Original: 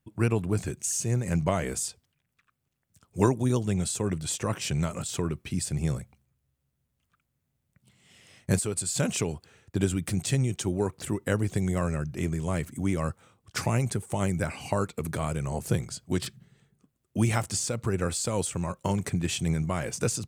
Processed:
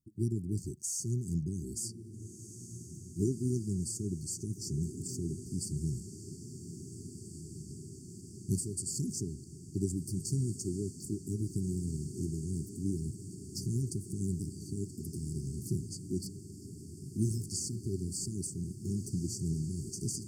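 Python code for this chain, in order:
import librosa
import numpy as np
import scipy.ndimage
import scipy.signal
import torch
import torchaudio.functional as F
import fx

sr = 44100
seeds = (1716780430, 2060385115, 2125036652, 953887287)

y = fx.brickwall_bandstop(x, sr, low_hz=410.0, high_hz=4400.0)
y = fx.echo_diffused(y, sr, ms=1757, feedback_pct=73, wet_db=-11.5)
y = y * librosa.db_to_amplitude(-6.5)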